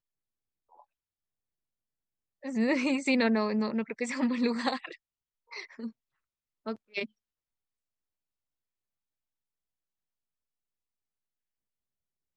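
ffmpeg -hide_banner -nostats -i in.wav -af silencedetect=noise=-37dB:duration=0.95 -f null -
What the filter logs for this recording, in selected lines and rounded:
silence_start: 0.00
silence_end: 2.45 | silence_duration: 2.45
silence_start: 7.05
silence_end: 12.37 | silence_duration: 5.31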